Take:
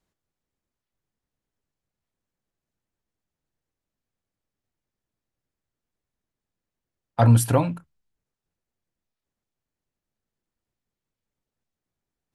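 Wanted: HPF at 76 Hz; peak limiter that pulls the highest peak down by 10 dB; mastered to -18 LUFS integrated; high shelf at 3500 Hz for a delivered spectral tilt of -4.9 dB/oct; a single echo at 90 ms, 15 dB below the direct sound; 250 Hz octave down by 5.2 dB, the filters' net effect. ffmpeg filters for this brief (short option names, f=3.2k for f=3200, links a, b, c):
-af "highpass=76,equalizer=f=250:t=o:g=-6.5,highshelf=f=3.5k:g=8,alimiter=limit=-15dB:level=0:latency=1,aecho=1:1:90:0.178,volume=8dB"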